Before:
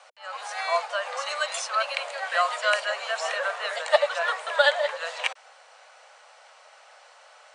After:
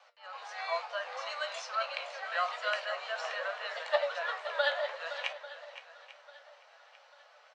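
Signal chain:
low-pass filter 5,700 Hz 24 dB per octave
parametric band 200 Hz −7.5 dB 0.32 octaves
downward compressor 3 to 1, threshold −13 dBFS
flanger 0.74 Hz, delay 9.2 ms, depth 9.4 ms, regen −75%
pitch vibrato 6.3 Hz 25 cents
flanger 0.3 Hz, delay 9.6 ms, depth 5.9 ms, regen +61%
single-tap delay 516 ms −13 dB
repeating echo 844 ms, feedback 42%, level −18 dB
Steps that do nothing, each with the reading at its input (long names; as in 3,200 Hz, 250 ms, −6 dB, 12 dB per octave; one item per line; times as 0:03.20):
parametric band 200 Hz: nothing at its input below 430 Hz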